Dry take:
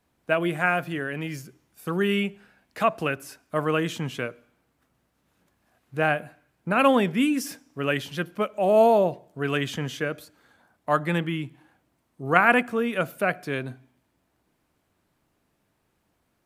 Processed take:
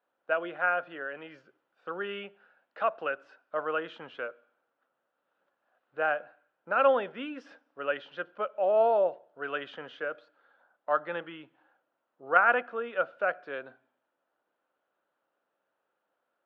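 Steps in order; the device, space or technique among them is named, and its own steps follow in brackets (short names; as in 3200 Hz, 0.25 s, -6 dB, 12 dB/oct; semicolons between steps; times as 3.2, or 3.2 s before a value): phone earpiece (speaker cabinet 450–3300 Hz, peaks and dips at 540 Hz +9 dB, 800 Hz +3 dB, 1400 Hz +9 dB, 2200 Hz -7 dB); gain -8.5 dB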